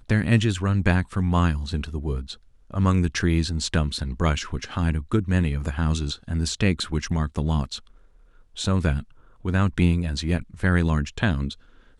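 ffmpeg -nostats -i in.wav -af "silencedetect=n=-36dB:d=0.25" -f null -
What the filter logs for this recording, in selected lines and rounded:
silence_start: 2.34
silence_end: 2.71 | silence_duration: 0.36
silence_start: 7.78
silence_end: 8.57 | silence_duration: 0.78
silence_start: 9.03
silence_end: 9.45 | silence_duration: 0.42
silence_start: 11.53
silence_end: 12.00 | silence_duration: 0.46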